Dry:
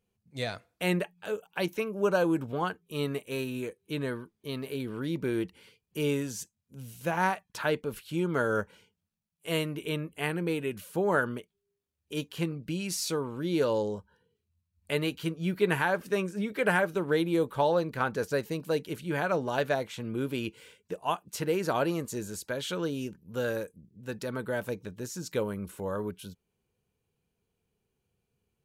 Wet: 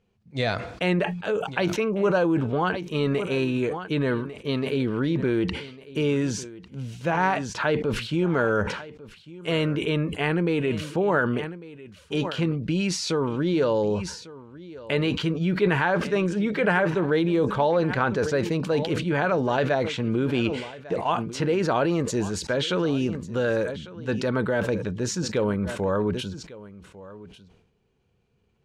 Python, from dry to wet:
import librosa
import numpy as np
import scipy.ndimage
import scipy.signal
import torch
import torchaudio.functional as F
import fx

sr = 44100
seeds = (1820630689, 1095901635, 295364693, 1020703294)

p1 = fx.over_compress(x, sr, threshold_db=-33.0, ratio=-1.0)
p2 = x + (p1 * librosa.db_to_amplitude(-0.5))
p3 = fx.air_absorb(p2, sr, metres=120.0)
p4 = p3 + 10.0 ** (-18.5 / 20.0) * np.pad(p3, (int(1149 * sr / 1000.0), 0))[:len(p3)]
p5 = fx.sustainer(p4, sr, db_per_s=70.0)
y = p5 * librosa.db_to_amplitude(2.5)